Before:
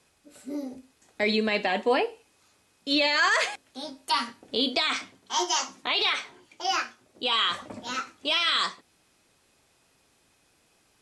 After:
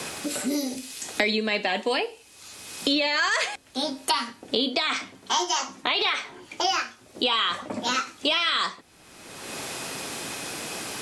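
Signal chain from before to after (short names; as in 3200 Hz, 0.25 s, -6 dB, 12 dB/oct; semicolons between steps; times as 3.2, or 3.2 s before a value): three-band squash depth 100%; gain +1.5 dB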